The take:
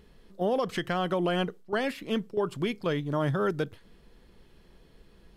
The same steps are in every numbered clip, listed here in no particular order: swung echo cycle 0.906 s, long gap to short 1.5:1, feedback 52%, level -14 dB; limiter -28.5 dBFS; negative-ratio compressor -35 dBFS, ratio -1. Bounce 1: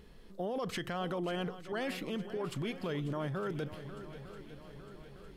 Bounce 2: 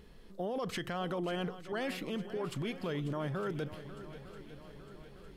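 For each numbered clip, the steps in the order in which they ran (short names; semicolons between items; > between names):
limiter > swung echo > negative-ratio compressor; limiter > negative-ratio compressor > swung echo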